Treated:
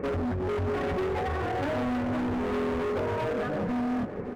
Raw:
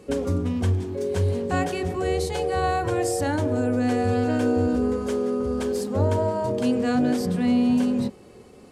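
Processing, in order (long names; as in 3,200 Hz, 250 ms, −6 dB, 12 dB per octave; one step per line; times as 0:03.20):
variable-slope delta modulation 32 kbit/s
Butterworth low-pass 2,100 Hz 48 dB per octave
dynamic equaliser 630 Hz, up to +4 dB, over −44 dBFS, Q 7.3
in parallel at −1 dB: brickwall limiter −19 dBFS, peak gain reduction 9 dB
on the sum: downward compressor 16 to 1, threshold −24 dBFS, peak gain reduction 11.5 dB
time stretch by phase vocoder 0.5×
hard clipping −36 dBFS, distortion −6 dB
on a send: single-tap delay 563 ms −11.5 dB
on the sum: level +8.5 dB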